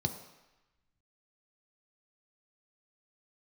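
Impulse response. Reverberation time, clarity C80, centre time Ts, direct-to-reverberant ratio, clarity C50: 1.0 s, 11.5 dB, 17 ms, 6.0 dB, 10.0 dB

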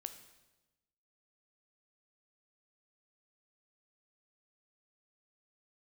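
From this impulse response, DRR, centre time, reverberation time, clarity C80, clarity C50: 8.5 dB, 12 ms, 1.1 s, 13.0 dB, 11.0 dB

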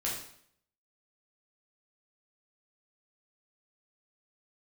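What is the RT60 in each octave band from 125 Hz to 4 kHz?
0.70, 0.65, 0.65, 0.60, 0.60, 0.60 seconds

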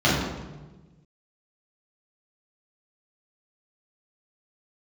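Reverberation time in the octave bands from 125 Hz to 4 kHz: 1.8, 1.6, 1.3, 1.1, 0.95, 0.80 seconds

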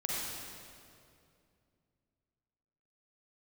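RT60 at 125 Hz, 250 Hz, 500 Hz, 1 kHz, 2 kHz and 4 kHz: 3.3, 3.1, 2.7, 2.2, 2.0, 1.9 seconds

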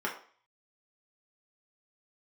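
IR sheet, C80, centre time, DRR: 13.0 dB, 22 ms, −4.0 dB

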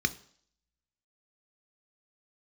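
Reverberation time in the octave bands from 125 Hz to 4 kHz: 0.50, 0.55, 0.55, 0.55, 0.55, 0.65 seconds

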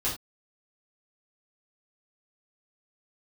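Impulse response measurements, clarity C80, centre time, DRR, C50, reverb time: 13.5 dB, 29 ms, −8.0 dB, 7.0 dB, non-exponential decay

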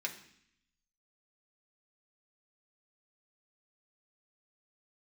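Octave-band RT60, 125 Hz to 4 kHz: 1.0, 0.95, 0.65, 0.65, 0.80, 0.80 seconds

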